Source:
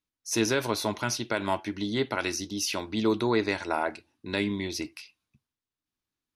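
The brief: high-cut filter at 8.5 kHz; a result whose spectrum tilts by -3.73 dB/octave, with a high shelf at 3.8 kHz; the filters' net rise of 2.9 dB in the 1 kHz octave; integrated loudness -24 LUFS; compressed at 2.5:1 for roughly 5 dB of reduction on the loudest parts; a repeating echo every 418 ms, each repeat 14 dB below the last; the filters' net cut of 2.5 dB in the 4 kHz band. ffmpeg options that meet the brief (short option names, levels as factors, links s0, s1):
-af "lowpass=8500,equalizer=f=1000:t=o:g=3.5,highshelf=f=3800:g=3.5,equalizer=f=4000:t=o:g=-5.5,acompressor=threshold=0.0447:ratio=2.5,aecho=1:1:418|836:0.2|0.0399,volume=2.51"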